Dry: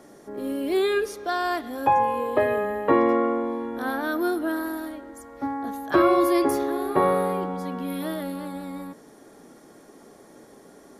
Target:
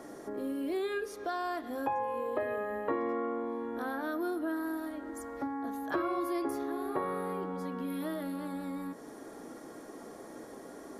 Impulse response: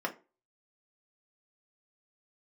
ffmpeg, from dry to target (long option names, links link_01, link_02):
-filter_complex "[0:a]asplit=2[link_01][link_02];[1:a]atrim=start_sample=2205,lowpass=3400[link_03];[link_02][link_03]afir=irnorm=-1:irlink=0,volume=-12dB[link_04];[link_01][link_04]amix=inputs=2:normalize=0,acompressor=threshold=-38dB:ratio=2.5"